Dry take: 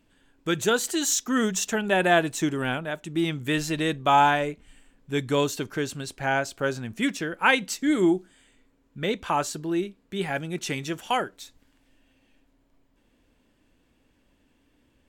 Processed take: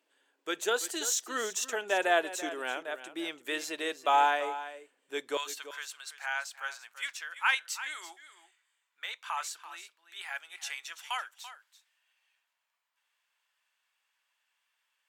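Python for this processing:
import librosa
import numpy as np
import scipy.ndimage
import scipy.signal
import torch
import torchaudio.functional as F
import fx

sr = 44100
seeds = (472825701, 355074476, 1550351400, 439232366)

y = fx.highpass(x, sr, hz=fx.steps((0.0, 400.0), (5.37, 1000.0)), slope=24)
y = y + 10.0 ** (-13.5 / 20.0) * np.pad(y, (int(336 * sr / 1000.0), 0))[:len(y)]
y = F.gain(torch.from_numpy(y), -5.5).numpy()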